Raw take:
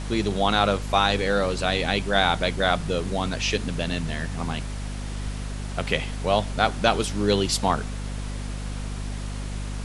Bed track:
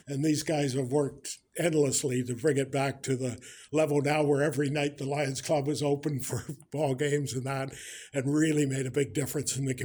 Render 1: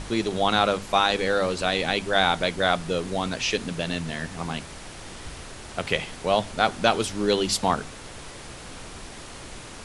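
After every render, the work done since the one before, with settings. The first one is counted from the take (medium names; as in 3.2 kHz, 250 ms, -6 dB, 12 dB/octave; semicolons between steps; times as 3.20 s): hum notches 50/100/150/200/250 Hz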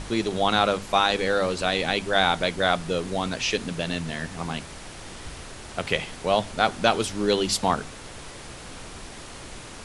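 no audible change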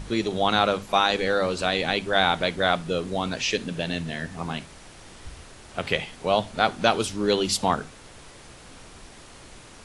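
noise print and reduce 6 dB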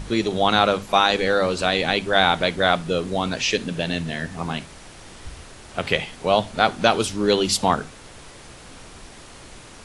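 trim +3.5 dB; peak limiter -1 dBFS, peak gain reduction 1.5 dB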